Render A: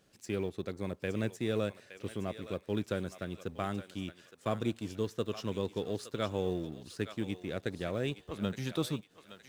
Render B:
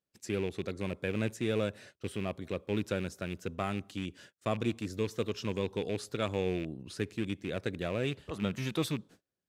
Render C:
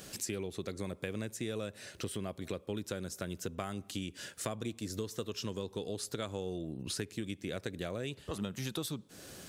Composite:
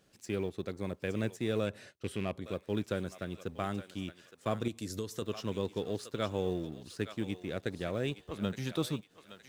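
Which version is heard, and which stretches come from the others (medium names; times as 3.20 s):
A
1.67–2.46 s: from B
4.68–5.22 s: from C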